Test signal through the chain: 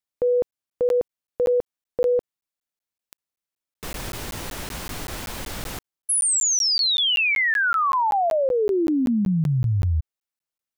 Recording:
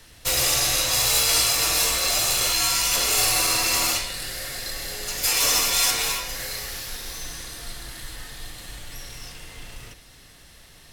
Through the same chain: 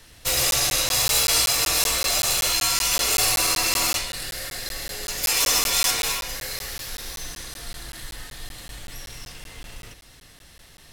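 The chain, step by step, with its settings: crackling interface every 0.19 s, samples 512, zero, from 0.51

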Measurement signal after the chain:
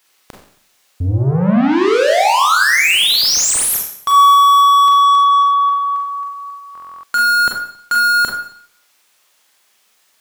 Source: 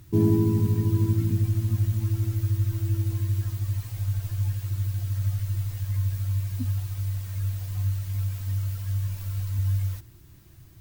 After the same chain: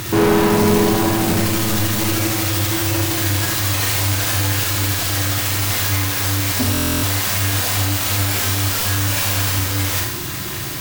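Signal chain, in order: overdrive pedal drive 41 dB, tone 7200 Hz, clips at -9.5 dBFS; Schroeder reverb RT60 0.61 s, combs from 30 ms, DRR 0 dB; stuck buffer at 6.73, samples 1024, times 12

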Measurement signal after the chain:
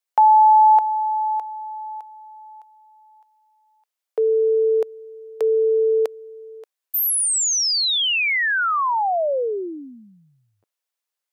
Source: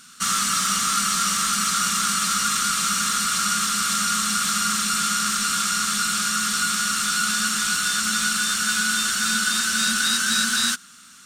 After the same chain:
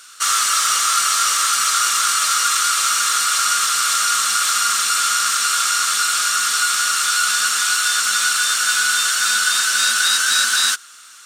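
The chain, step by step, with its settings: HPF 440 Hz 24 dB/oct; gain +5 dB

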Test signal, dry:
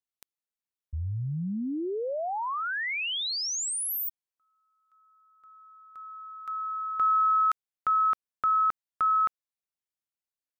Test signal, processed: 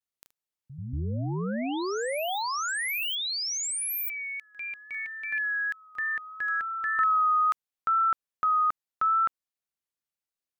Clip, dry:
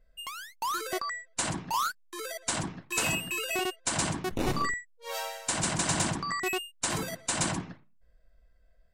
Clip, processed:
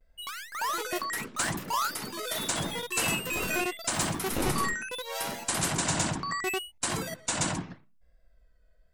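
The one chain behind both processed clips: vibrato 0.78 Hz 60 cents; echoes that change speed 88 ms, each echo +5 st, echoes 2, each echo -6 dB

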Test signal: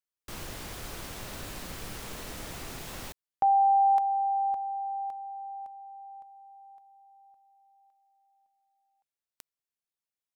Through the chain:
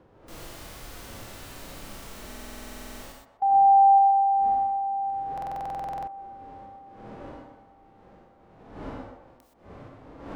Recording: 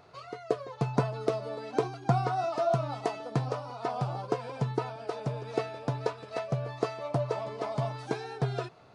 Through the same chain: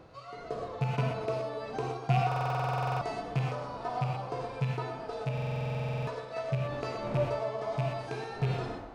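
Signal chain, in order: rattling part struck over -26 dBFS, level -19 dBFS; wind noise 580 Hz -44 dBFS; on a send: narrowing echo 0.127 s, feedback 47%, band-pass 740 Hz, level -7 dB; on the sum: non-linear reverb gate 0.14 s rising, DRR 5 dB; harmonic-percussive split percussive -13 dB; stuck buffer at 2.27/5.33, samples 2048, times 15

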